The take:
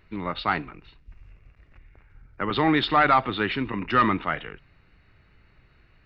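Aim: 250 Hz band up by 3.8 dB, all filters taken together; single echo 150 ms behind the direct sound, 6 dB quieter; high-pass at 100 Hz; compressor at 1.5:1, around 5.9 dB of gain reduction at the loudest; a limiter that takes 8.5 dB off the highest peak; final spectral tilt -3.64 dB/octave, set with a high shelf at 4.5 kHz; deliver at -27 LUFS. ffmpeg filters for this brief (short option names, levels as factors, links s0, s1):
-af "highpass=100,equalizer=f=250:t=o:g=5,highshelf=f=4500:g=-8,acompressor=threshold=0.0282:ratio=1.5,alimiter=limit=0.0708:level=0:latency=1,aecho=1:1:150:0.501,volume=1.88"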